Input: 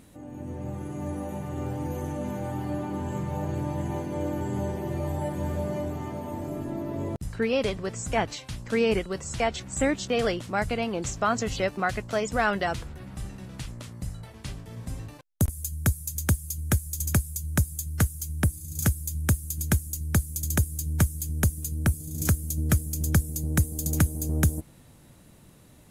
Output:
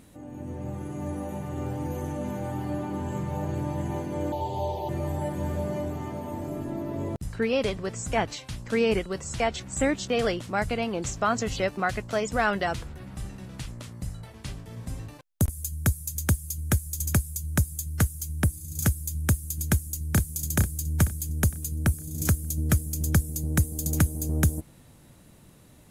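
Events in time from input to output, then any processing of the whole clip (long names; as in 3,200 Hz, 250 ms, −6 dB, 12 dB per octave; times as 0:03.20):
0:04.32–0:04.89: drawn EQ curve 100 Hz 0 dB, 230 Hz −15 dB, 420 Hz 0 dB, 900 Hz +9 dB, 1,400 Hz −22 dB, 2,400 Hz −3 dB, 3,800 Hz +12 dB, 8,400 Hz −11 dB, 14,000 Hz +2 dB
0:19.67–0:20.25: delay throw 460 ms, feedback 40%, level −6 dB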